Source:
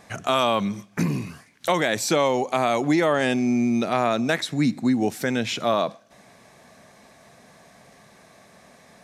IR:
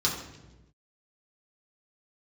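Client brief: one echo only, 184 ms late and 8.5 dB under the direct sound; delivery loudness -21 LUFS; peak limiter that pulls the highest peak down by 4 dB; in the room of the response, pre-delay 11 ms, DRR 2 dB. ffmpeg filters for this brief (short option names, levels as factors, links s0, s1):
-filter_complex "[0:a]alimiter=limit=0.251:level=0:latency=1,aecho=1:1:184:0.376,asplit=2[s0][s1];[1:a]atrim=start_sample=2205,adelay=11[s2];[s1][s2]afir=irnorm=-1:irlink=0,volume=0.266[s3];[s0][s3]amix=inputs=2:normalize=0,volume=0.944"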